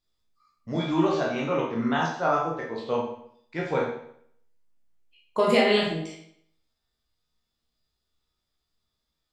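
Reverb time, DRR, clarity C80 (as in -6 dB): 0.65 s, -4.0 dB, 7.0 dB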